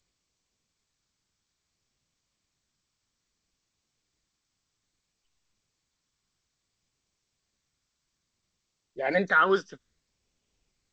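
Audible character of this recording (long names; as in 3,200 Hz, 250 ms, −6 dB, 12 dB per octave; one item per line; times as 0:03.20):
phaser sweep stages 12, 0.6 Hz, lowest notch 710–1,500 Hz
tremolo saw up 1.4 Hz, depth 40%
G.722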